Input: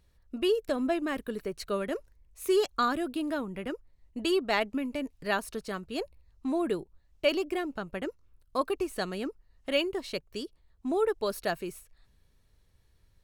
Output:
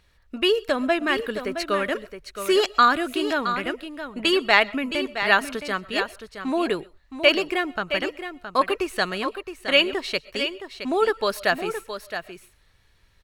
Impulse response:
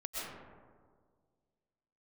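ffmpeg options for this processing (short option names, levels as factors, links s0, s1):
-filter_complex "[0:a]equalizer=f=2100:t=o:w=3:g=11.5,aecho=1:1:668:0.335,asplit=2[s0][s1];[1:a]atrim=start_sample=2205,atrim=end_sample=6174[s2];[s1][s2]afir=irnorm=-1:irlink=0,volume=0.15[s3];[s0][s3]amix=inputs=2:normalize=0,volume=1.19"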